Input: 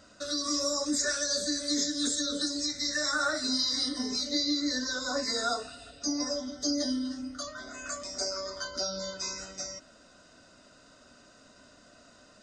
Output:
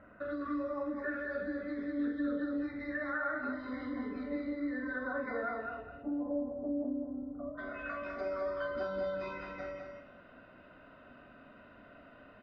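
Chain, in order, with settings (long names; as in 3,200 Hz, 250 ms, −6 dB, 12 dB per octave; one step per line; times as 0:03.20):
Butterworth low-pass 2,200 Hz 36 dB per octave, from 0:05.81 900 Hz, from 0:07.57 2,800 Hz
downward compressor 3 to 1, threshold −37 dBFS, peak gain reduction 9 dB
double-tracking delay 45 ms −7 dB
repeating echo 205 ms, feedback 18%, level −4.5 dB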